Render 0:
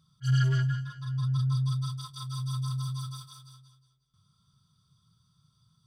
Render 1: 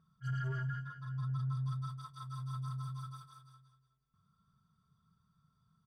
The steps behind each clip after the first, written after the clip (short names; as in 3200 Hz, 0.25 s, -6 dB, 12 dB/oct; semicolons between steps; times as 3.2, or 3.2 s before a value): resonant high shelf 2400 Hz -12 dB, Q 1.5; comb 4.4 ms, depth 51%; limiter -26.5 dBFS, peak gain reduction 8.5 dB; gain -4 dB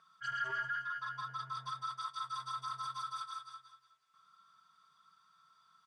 HPF 1100 Hz 12 dB/oct; in parallel at -2 dB: negative-ratio compressor -56 dBFS, ratio -1; on the sum: air absorption 76 m; gain +9.5 dB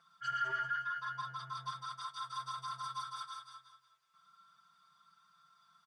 comb 5.8 ms, depth 95%; gain -2 dB